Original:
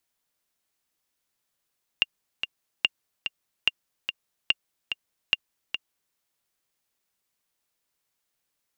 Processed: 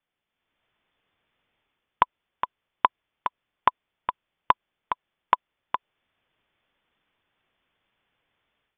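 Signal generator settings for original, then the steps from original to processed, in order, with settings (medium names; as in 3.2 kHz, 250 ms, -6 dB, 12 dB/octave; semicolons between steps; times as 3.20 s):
metronome 145 bpm, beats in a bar 2, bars 5, 2.8 kHz, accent 8 dB -6.5 dBFS
steep high-pass 220 Hz; level rider gain up to 11 dB; frequency inversion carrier 3.8 kHz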